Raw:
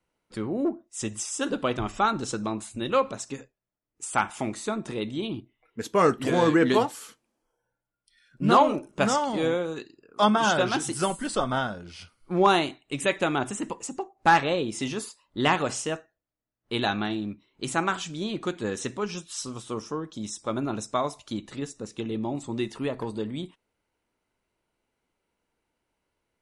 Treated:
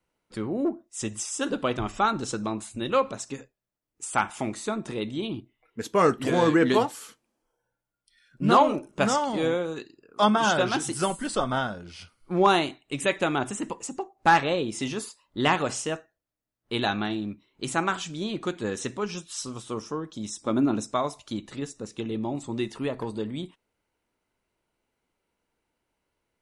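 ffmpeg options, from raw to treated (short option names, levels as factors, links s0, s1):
-filter_complex "[0:a]asettb=1/sr,asplit=3[s0][s1][s2];[s0]atrim=end=20.414[s3];[s1]atrim=start=20.41:end=20.92,asetpts=PTS-STARTPTS,afade=t=in:d=0.004:c=qsin,afade=t=out:st=0.506:d=0.004:c=qsin,equalizer=f=270:t=o:w=0.77:g=9[s4];[s2]atrim=start=20.916[s5];[s3][s4]acrossfade=d=0.004:c1=hsin:c2=qsin[s6];[s6][s5]acrossfade=d=0.004:c1=qsin:c2=hsin"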